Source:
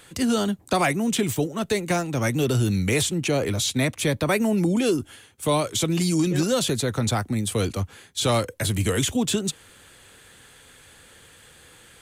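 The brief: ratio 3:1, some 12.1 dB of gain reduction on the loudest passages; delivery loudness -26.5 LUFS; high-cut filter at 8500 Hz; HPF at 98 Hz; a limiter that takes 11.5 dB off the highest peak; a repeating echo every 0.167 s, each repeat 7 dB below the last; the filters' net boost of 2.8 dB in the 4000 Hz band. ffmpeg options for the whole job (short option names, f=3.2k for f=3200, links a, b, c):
-af "highpass=98,lowpass=8.5k,equalizer=f=4k:t=o:g=3.5,acompressor=threshold=-35dB:ratio=3,alimiter=level_in=6dB:limit=-24dB:level=0:latency=1,volume=-6dB,aecho=1:1:167|334|501|668|835:0.447|0.201|0.0905|0.0407|0.0183,volume=12dB"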